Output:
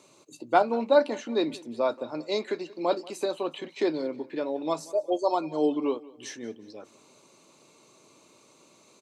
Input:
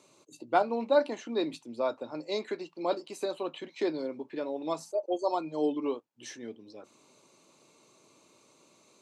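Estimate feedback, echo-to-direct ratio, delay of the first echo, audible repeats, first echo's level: 45%, −20.5 dB, 183 ms, 2, −21.5 dB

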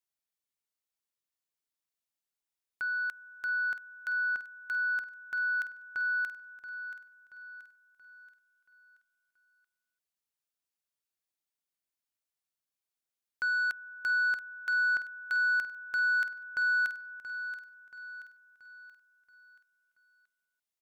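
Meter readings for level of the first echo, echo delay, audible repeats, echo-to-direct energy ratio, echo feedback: −12.0 dB, 679 ms, 4, −11.0 dB, 45%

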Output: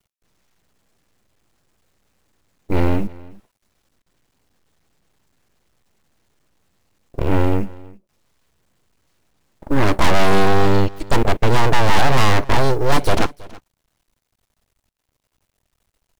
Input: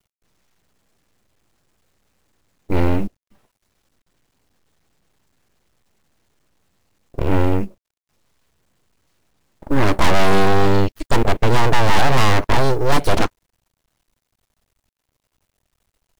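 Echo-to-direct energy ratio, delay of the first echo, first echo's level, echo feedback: −22.0 dB, 325 ms, −22.0 dB, repeats not evenly spaced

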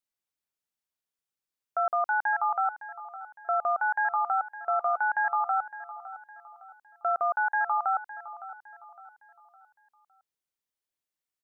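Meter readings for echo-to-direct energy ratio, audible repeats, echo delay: −14.0 dB, 3, 560 ms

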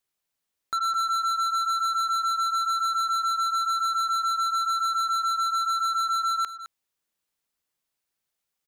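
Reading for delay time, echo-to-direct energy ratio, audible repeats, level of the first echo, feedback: 212 ms, −13.0 dB, 1, −13.0 dB, repeats not evenly spaced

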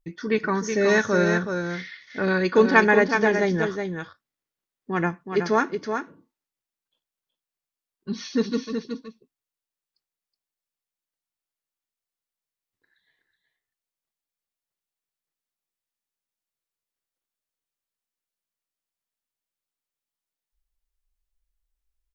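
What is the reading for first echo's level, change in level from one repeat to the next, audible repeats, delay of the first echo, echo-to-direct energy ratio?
−6.5 dB, repeats not evenly spaced, 1, 372 ms, −6.5 dB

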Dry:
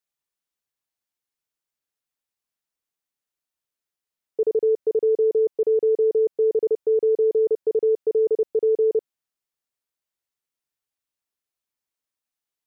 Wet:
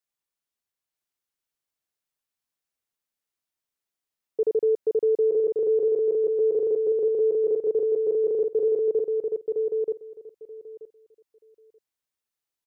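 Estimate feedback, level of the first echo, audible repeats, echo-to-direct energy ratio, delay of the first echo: 16%, −3.5 dB, 2, −3.5 dB, 931 ms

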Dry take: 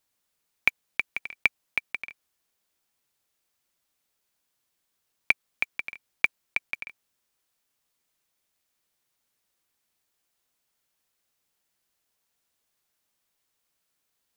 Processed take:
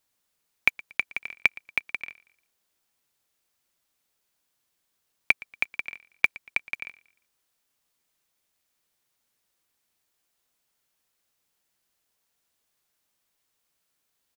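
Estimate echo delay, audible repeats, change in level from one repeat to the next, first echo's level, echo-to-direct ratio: 117 ms, 2, −8.5 dB, −22.0 dB, −21.5 dB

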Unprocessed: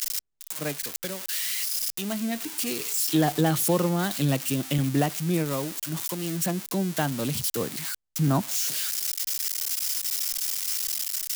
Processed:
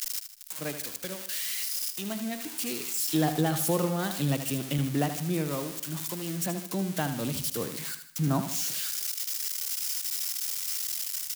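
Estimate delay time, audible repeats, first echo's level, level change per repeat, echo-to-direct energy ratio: 77 ms, 4, −9.5 dB, −7.0 dB, −8.5 dB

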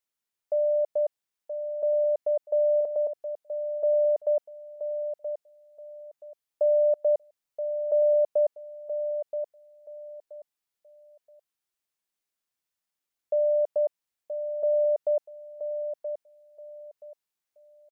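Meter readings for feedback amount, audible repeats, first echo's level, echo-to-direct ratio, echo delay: 24%, 3, −8.5 dB, −8.0 dB, 976 ms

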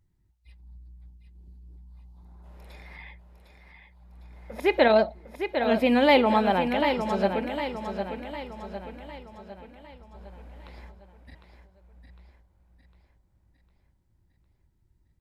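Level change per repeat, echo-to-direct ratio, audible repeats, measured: −6.0 dB, −6.5 dB, 5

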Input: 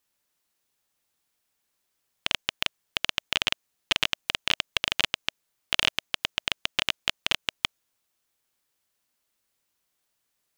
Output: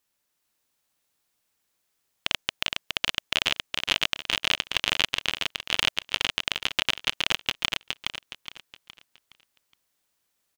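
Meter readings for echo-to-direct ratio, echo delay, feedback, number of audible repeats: −3.5 dB, 417 ms, 37%, 4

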